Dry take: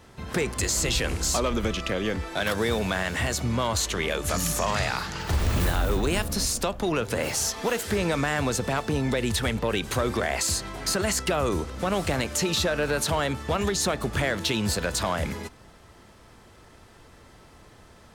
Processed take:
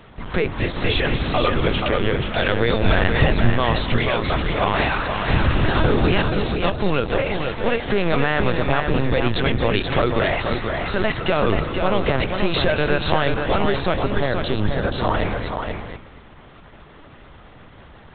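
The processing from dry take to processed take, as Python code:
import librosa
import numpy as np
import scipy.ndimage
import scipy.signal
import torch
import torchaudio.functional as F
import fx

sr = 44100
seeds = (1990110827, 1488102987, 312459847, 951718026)

y = fx.peak_eq(x, sr, hz=2400.0, db=-11.5, octaves=0.87, at=(14.01, 15.14))
y = fx.echo_feedback(y, sr, ms=230, feedback_pct=15, wet_db=-12.0)
y = fx.lpc_vocoder(y, sr, seeds[0], excitation='pitch_kept', order=10)
y = fx.low_shelf(y, sr, hz=260.0, db=8.5, at=(2.83, 3.5))
y = y + 10.0 ** (-5.5 / 20.0) * np.pad(y, (int(481 * sr / 1000.0), 0))[:len(y)]
y = y * 10.0 ** (6.0 / 20.0)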